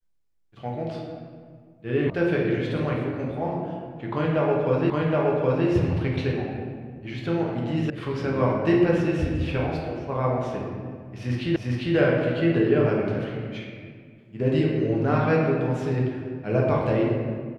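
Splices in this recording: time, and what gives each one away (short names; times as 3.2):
2.1 sound cut off
4.9 repeat of the last 0.77 s
7.9 sound cut off
11.56 repeat of the last 0.4 s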